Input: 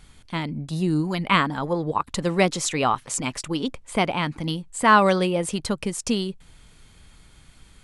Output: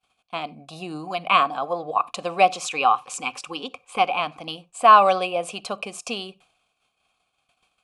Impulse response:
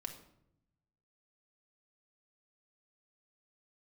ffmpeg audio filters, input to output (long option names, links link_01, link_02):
-filter_complex "[0:a]agate=range=-33dB:threshold=-39dB:ratio=3:detection=peak,asplit=3[link_01][link_02][link_03];[link_01]bandpass=frequency=730:width_type=q:width=8,volume=0dB[link_04];[link_02]bandpass=frequency=1090:width_type=q:width=8,volume=-6dB[link_05];[link_03]bandpass=frequency=2440:width_type=q:width=8,volume=-9dB[link_06];[link_04][link_05][link_06]amix=inputs=3:normalize=0,crystalizer=i=4:c=0,asettb=1/sr,asplit=3[link_07][link_08][link_09];[link_07]atrim=end=2.634[link_10];[link_08]atrim=start=2.63:end=4.19,asetpts=PTS-STARTPTS,afade=type=in:duration=0.004:curve=qsin,afade=type=out:start_time=1.556:duration=0.004:curve=qsin,asuperstop=centerf=650:order=4:qfactor=4.1[link_11];[link_09]atrim=start=4.186[link_12];[link_10][link_11]acrossfade=duration=0.004:curve1=hsin:curve2=qsin[link_13];[link_13][link_12]acrossfade=duration=0.004:curve1=qsin:curve2=hsin,asplit=2[link_14][link_15];[1:a]atrim=start_sample=2205,atrim=end_sample=4410,lowshelf=frequency=190:gain=9.5[link_16];[link_15][link_16]afir=irnorm=-1:irlink=0,volume=-8.5dB[link_17];[link_14][link_17]amix=inputs=2:normalize=0,volume=8.5dB"